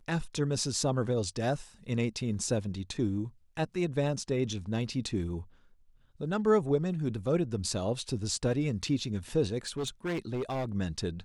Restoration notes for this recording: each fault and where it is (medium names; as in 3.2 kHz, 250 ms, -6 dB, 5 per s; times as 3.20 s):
9.67–10.74 s: clipped -29 dBFS